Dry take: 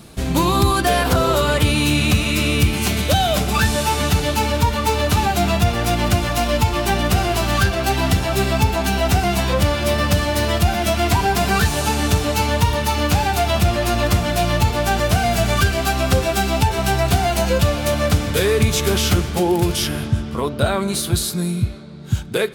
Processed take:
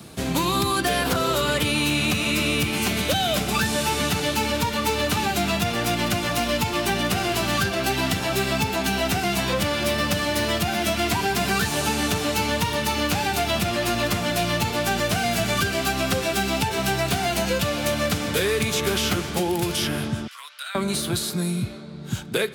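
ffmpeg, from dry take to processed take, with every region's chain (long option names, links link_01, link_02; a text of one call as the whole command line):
ffmpeg -i in.wav -filter_complex "[0:a]asettb=1/sr,asplit=3[link_01][link_02][link_03];[link_01]atrim=end=20.274[link_04];[link_02]atrim=start=20.27:end=20.75,asetpts=PTS-STARTPTS,afade=type=in:duration=0.004:curve=qsin,afade=type=out:start_time=0.476:duration=0.004:curve=qsin,highpass=frequency=1500:width=0.5412,highpass=frequency=1500:width=1.3066,acompressor=threshold=-40dB:ratio=1.5:attack=3.2:release=140:knee=1:detection=peak[link_05];[link_03]atrim=start=20.746[link_06];[link_04][link_05]acrossfade=duration=0.004:curve1=hsin:curve2=qsin[link_07];[link_07][link_06]acrossfade=duration=0.004:curve1=qsin:curve2=hsin,highpass=81,acrossover=split=140|550|1300|3300[link_08][link_09][link_10][link_11][link_12];[link_08]acompressor=threshold=-35dB:ratio=4[link_13];[link_09]acompressor=threshold=-25dB:ratio=4[link_14];[link_10]acompressor=threshold=-33dB:ratio=4[link_15];[link_11]acompressor=threshold=-26dB:ratio=4[link_16];[link_12]acompressor=threshold=-28dB:ratio=4[link_17];[link_13][link_14][link_15][link_16][link_17]amix=inputs=5:normalize=0" out.wav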